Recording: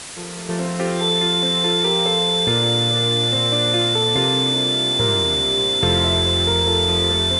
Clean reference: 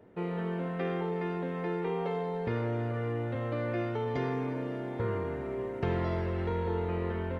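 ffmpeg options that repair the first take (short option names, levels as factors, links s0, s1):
-af "bandreject=f=3500:w=30,afwtdn=0.025,asetnsamples=n=441:p=0,asendcmd='0.49 volume volume -10.5dB',volume=1"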